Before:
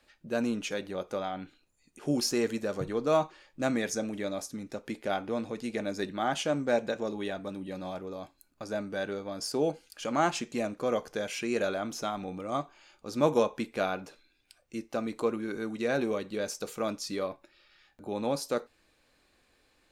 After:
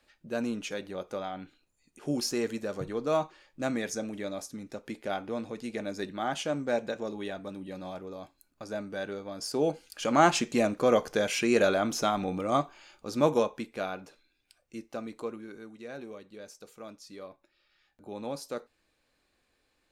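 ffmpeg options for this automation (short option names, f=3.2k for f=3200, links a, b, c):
-af "volume=13dB,afade=t=in:st=9.38:d=0.96:silence=0.398107,afade=t=out:st=12.46:d=1.2:silence=0.316228,afade=t=out:st=14.81:d=0.94:silence=0.354813,afade=t=in:st=17.06:d=1.06:silence=0.446684"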